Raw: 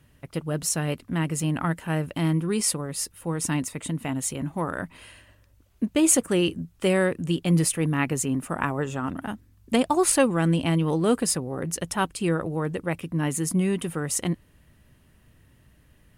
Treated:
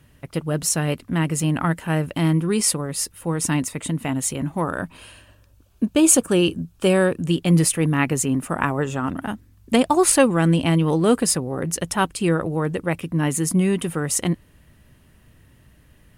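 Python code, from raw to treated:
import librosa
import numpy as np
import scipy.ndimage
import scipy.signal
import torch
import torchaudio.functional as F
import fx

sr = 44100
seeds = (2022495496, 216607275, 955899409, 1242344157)

y = fx.notch(x, sr, hz=2000.0, q=5.0, at=(4.64, 7.26))
y = y * librosa.db_to_amplitude(4.5)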